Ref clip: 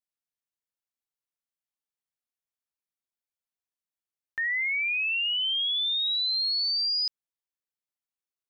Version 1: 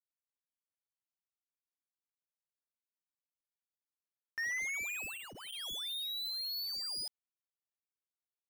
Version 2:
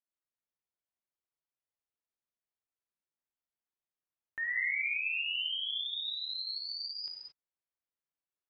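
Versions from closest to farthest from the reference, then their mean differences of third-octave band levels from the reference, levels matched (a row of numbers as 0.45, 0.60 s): 2, 1; 1.5, 16.0 dB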